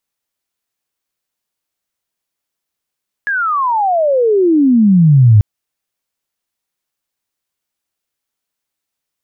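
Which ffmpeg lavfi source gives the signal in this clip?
-f lavfi -i "aevalsrc='pow(10,(-13.5+10.5*t/2.14)/20)*sin(2*PI*1700*2.14/log(100/1700)*(exp(log(100/1700)*t/2.14)-1))':d=2.14:s=44100"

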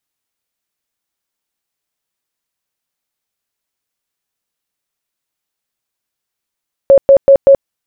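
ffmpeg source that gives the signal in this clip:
-f lavfi -i "aevalsrc='0.841*sin(2*PI*550*mod(t,0.19))*lt(mod(t,0.19),43/550)':d=0.76:s=44100"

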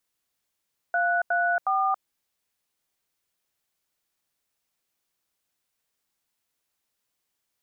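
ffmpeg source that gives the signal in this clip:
-f lavfi -i "aevalsrc='0.0668*clip(min(mod(t,0.363),0.278-mod(t,0.363))/0.002,0,1)*(eq(floor(t/0.363),0)*(sin(2*PI*697*mod(t,0.363))+sin(2*PI*1477*mod(t,0.363)))+eq(floor(t/0.363),1)*(sin(2*PI*697*mod(t,0.363))+sin(2*PI*1477*mod(t,0.363)))+eq(floor(t/0.363),2)*(sin(2*PI*770*mod(t,0.363))+sin(2*PI*1209*mod(t,0.363))))':d=1.089:s=44100"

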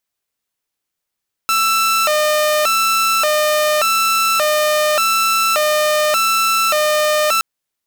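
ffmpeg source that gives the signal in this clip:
-f lavfi -i "aevalsrc='0.299*(2*mod((968.5*t+361.5/0.86*(0.5-abs(mod(0.86*t,1)-0.5))),1)-1)':d=5.92:s=44100"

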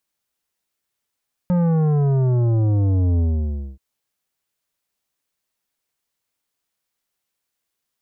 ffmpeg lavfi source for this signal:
-f lavfi -i "aevalsrc='0.158*clip((2.28-t)/0.59,0,1)*tanh(3.55*sin(2*PI*180*2.28/log(65/180)*(exp(log(65/180)*t/2.28)-1)))/tanh(3.55)':d=2.28:s=44100"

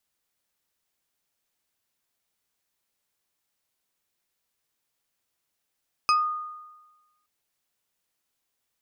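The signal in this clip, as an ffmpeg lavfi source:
-f lavfi -i "aevalsrc='0.158*pow(10,-3*t/1.2)*sin(2*PI*1230*t+1*pow(10,-3*t/0.22)*sin(2*PI*3.07*1230*t))':d=1.17:s=44100"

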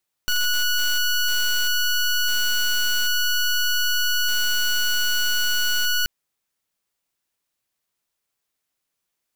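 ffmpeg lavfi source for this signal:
-f lavfi -i "aevalsrc='0.0944*(2*lt(mod(1470*t,1),0.15)-1)':d=5.78:s=44100"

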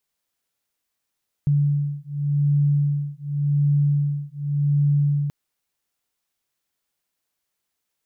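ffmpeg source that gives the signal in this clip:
-f lavfi -i "aevalsrc='0.0891*(sin(2*PI*144*t)+sin(2*PI*144.88*t))':d=3.83:s=44100"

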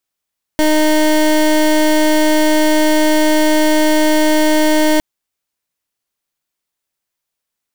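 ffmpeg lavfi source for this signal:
-f lavfi -i "aevalsrc='0.266*(2*lt(mod(308*t,1),0.24)-1)':d=4.41:s=44100"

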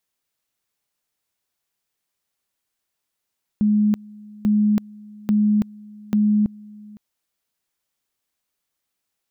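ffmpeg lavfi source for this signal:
-f lavfi -i "aevalsrc='pow(10,(-14-24*gte(mod(t,0.84),0.33))/20)*sin(2*PI*210*t)':d=3.36:s=44100"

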